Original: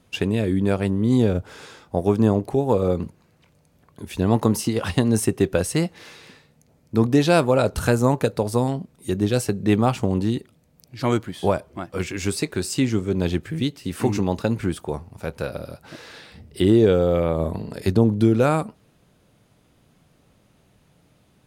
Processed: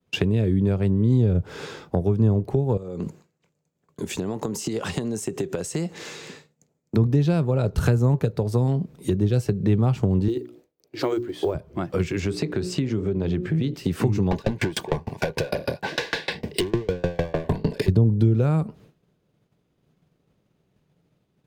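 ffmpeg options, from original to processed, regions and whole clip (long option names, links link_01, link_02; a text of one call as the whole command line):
ffmpeg -i in.wav -filter_complex "[0:a]asettb=1/sr,asplit=3[link_01][link_02][link_03];[link_01]atrim=end=2.774[link_04];[link_02]atrim=start=2.77:end=6.96,asetpts=PTS-STARTPTS,afade=type=in:duration=0.004:curve=qsin,afade=type=out:start_time=4.186:duration=0.004:curve=qsin,highpass=frequency=180:poles=1,equalizer=frequency=7300:width=2.4:gain=12,acompressor=threshold=-29dB:ratio=16:attack=3.2:release=140:knee=1:detection=peak[link_05];[link_03]atrim=start=6.956[link_06];[link_04][link_05]acrossfade=duration=0.004:curve1=hsin:curve2=qsin[link_07];[link_07][link_06]acrossfade=duration=0.004:curve1=qsin:curve2=hsin,asettb=1/sr,asplit=3[link_08][link_09][link_10];[link_08]atrim=end=10.284[link_11];[link_09]atrim=start=10.28:end=11.55,asetpts=PTS-STARTPTS,afade=type=in:duration=0.004:curve=qsin,afade=type=out:start_time=1.266:duration=0.004:curve=qsin,lowshelf=frequency=250:width_type=q:width=3:gain=-10,bandreject=frequency=60:width_type=h:width=6,bandreject=frequency=120:width_type=h:width=6,bandreject=frequency=180:width_type=h:width=6,bandreject=frequency=240:width_type=h:width=6,bandreject=frequency=300:width_type=h:width=6,bandreject=frequency=360:width_type=h:width=6,acrusher=bits=8:mode=log:mix=0:aa=0.000001[link_12];[link_10]atrim=start=11.546[link_13];[link_11][link_12]acrossfade=duration=0.004:curve1=hsin:curve2=qsin[link_14];[link_14][link_13]acrossfade=duration=0.004:curve1=qsin:curve2=hsin,asettb=1/sr,asplit=3[link_15][link_16][link_17];[link_15]atrim=end=12.204[link_18];[link_16]atrim=start=12.2:end=13.74,asetpts=PTS-STARTPTS,afade=type=in:duration=0.004:curve=qsin,afade=type=out:start_time=1.536:duration=0.004:curve=qsin,aemphasis=mode=reproduction:type=50kf,bandreject=frequency=60:width_type=h:width=6,bandreject=frequency=120:width_type=h:width=6,bandreject=frequency=180:width_type=h:width=6,bandreject=frequency=240:width_type=h:width=6,bandreject=frequency=300:width_type=h:width=6,bandreject=frequency=360:width_type=h:width=6,bandreject=frequency=420:width_type=h:width=6,bandreject=frequency=480:width_type=h:width=6,bandreject=frequency=540:width_type=h:width=6,acompressor=threshold=-27dB:ratio=2.5:attack=3.2:release=140:knee=1:detection=peak[link_19];[link_17]atrim=start=13.736[link_20];[link_18][link_19]acrossfade=duration=0.004:curve1=hsin:curve2=qsin[link_21];[link_21][link_20]acrossfade=duration=0.004:curve1=qsin:curve2=hsin,asettb=1/sr,asplit=3[link_22][link_23][link_24];[link_22]atrim=end=14.314[link_25];[link_23]atrim=start=14.31:end=17.88,asetpts=PTS-STARTPTS,afade=type=in:duration=0.004:curve=qsin,afade=type=out:start_time=3.566:duration=0.004:curve=qsin,asplit=2[link_26][link_27];[link_27]highpass=frequency=720:poles=1,volume=34dB,asoftclip=type=tanh:threshold=-6dB[link_28];[link_26][link_28]amix=inputs=2:normalize=0,lowpass=frequency=4600:poles=1,volume=-6dB,asuperstop=centerf=1300:order=12:qfactor=5.5,aeval=exprs='val(0)*pow(10,-32*if(lt(mod(6.6*n/s,1),2*abs(6.6)/1000),1-mod(6.6*n/s,1)/(2*abs(6.6)/1000),(mod(6.6*n/s,1)-2*abs(6.6)/1000)/(1-2*abs(6.6)/1000))/20)':channel_layout=same[link_29];[link_24]atrim=start=17.876[link_30];[link_25][link_29]acrossfade=duration=0.004:curve1=hsin:curve2=qsin[link_31];[link_31][link_30]acrossfade=duration=0.004:curve1=qsin:curve2=hsin,agate=range=-33dB:threshold=-47dB:ratio=3:detection=peak,equalizer=frequency=160:width_type=o:width=0.67:gain=7,equalizer=frequency=400:width_type=o:width=0.67:gain=7,equalizer=frequency=10000:width_type=o:width=0.67:gain=-8,acrossover=split=130[link_32][link_33];[link_33]acompressor=threshold=-27dB:ratio=10[link_34];[link_32][link_34]amix=inputs=2:normalize=0,volume=4.5dB" out.wav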